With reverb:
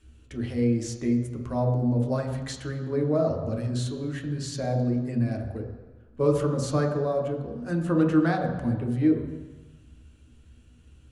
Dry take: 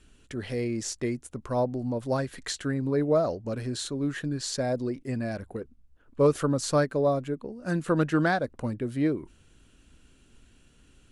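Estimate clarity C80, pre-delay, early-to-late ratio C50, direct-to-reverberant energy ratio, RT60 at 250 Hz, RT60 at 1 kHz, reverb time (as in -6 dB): 8.0 dB, 3 ms, 6.0 dB, 1.0 dB, 1.2 s, 1.3 s, 1.3 s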